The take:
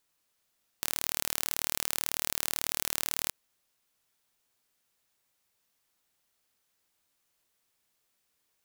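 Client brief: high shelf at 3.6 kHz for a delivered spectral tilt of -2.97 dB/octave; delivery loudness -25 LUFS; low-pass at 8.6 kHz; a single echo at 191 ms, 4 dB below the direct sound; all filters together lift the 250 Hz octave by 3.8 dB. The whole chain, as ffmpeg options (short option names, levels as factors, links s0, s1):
-af "lowpass=8600,equalizer=f=250:t=o:g=5,highshelf=f=3600:g=-8,aecho=1:1:191:0.631,volume=4.47"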